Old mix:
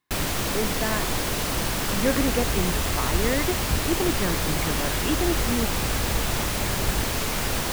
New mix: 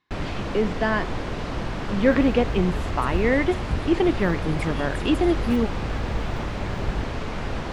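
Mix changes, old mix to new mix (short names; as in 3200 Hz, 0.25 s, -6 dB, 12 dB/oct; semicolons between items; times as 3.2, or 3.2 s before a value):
speech +5.5 dB; first sound: add tape spacing loss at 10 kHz 29 dB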